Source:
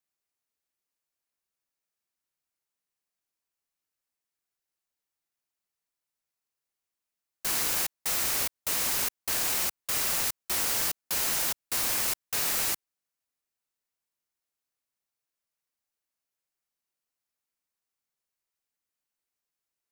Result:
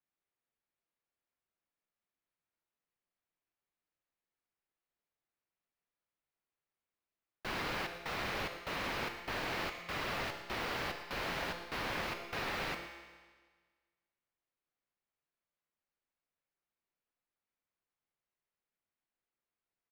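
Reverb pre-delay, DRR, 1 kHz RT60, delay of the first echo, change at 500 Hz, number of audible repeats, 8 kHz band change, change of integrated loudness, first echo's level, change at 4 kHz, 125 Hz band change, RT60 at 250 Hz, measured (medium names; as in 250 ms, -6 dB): 6 ms, 4.5 dB, 1.5 s, 115 ms, +0.5 dB, 1, -25.0 dB, -11.5 dB, -15.0 dB, -9.0 dB, +1.0 dB, 1.5 s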